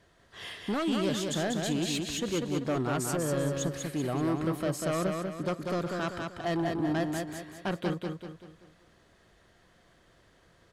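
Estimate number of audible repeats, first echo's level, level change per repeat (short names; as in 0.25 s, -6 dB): 5, -4.0 dB, -7.5 dB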